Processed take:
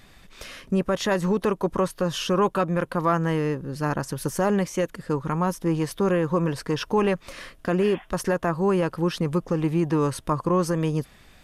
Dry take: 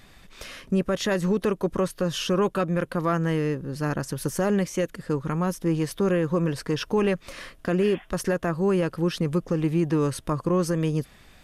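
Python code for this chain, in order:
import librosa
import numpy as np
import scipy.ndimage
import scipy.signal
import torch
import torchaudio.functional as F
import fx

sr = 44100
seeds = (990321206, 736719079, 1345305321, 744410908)

y = fx.dynamic_eq(x, sr, hz=930.0, q=1.8, threshold_db=-43.0, ratio=4.0, max_db=7)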